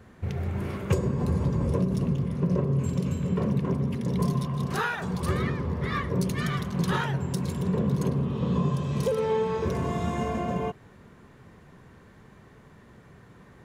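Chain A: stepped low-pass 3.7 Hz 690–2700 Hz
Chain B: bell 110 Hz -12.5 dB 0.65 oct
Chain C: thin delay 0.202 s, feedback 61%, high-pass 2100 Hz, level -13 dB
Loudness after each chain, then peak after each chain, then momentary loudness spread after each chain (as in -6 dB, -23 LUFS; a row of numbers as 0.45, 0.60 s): -26.0, -30.0, -28.0 LUFS; -8.0, -14.0, -12.0 dBFS; 6, 4, 4 LU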